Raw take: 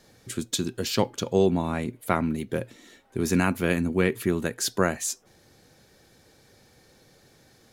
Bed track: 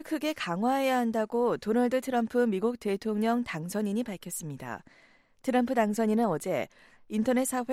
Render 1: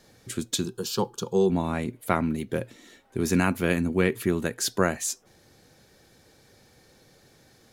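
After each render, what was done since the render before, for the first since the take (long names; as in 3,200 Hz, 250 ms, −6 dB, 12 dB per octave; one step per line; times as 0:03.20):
0:00.66–0:01.50: phaser with its sweep stopped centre 410 Hz, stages 8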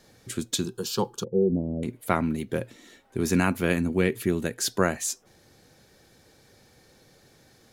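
0:01.24–0:01.83: elliptic low-pass filter 560 Hz, stop band 60 dB
0:03.98–0:04.59: parametric band 1,100 Hz −5.5 dB 0.99 octaves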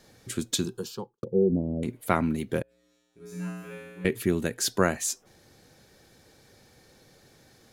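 0:00.63–0:01.23: fade out and dull
0:02.62–0:04.05: tuned comb filter 60 Hz, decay 1.5 s, harmonics odd, mix 100%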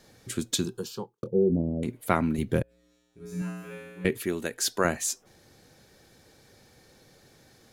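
0:00.89–0:01.70: double-tracking delay 24 ms −12 dB
0:02.38–0:03.42: low-shelf EQ 150 Hz +11.5 dB
0:04.17–0:04.85: parametric band 110 Hz −11.5 dB 2.4 octaves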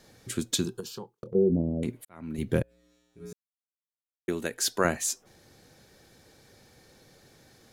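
0:00.80–0:01.35: downward compressor, threshold −34 dBFS
0:02.05–0:02.47: fade in quadratic
0:03.33–0:04.28: silence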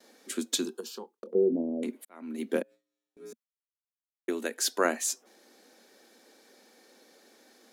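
elliptic high-pass filter 230 Hz, stop band 50 dB
noise gate with hold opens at −53 dBFS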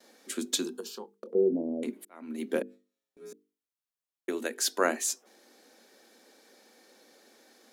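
mains-hum notches 50/100/150/200/250/300/350/400/450 Hz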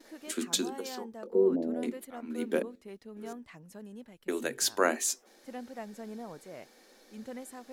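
mix in bed track −16.5 dB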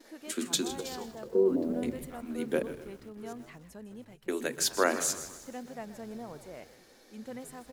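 echo with shifted repeats 158 ms, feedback 43%, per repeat −92 Hz, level −15 dB
feedback echo at a low word length 126 ms, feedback 55%, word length 8 bits, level −14.5 dB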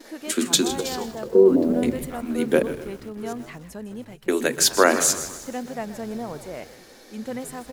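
level +10.5 dB
brickwall limiter −2 dBFS, peak gain reduction 2 dB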